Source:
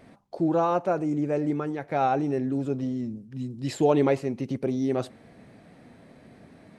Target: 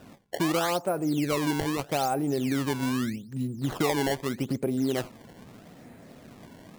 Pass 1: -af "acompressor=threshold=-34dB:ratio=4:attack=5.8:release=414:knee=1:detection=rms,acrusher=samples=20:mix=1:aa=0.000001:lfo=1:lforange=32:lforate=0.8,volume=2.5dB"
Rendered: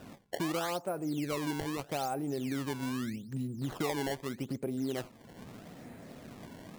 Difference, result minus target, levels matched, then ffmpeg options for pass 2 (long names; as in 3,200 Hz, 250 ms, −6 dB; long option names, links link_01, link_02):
downward compressor: peak gain reduction +7.5 dB
-af "acompressor=threshold=-24dB:ratio=4:attack=5.8:release=414:knee=1:detection=rms,acrusher=samples=20:mix=1:aa=0.000001:lfo=1:lforange=32:lforate=0.8,volume=2.5dB"